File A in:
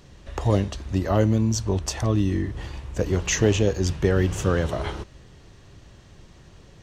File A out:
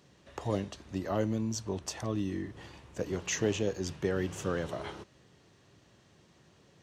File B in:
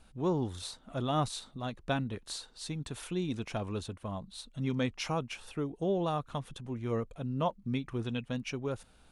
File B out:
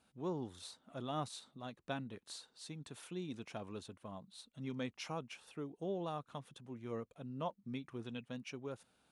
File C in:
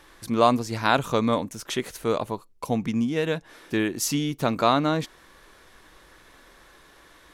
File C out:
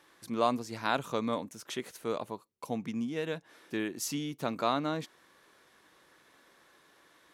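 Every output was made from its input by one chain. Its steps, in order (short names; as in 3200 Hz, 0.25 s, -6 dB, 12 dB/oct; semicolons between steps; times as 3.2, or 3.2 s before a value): HPF 140 Hz 12 dB/oct; gain -9 dB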